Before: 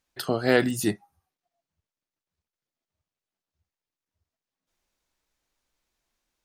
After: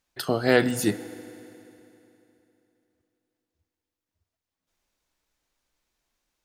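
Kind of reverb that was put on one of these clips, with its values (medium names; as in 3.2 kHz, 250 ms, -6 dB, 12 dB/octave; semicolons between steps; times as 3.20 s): FDN reverb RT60 3.1 s, high-frequency decay 0.9×, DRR 14.5 dB; trim +1 dB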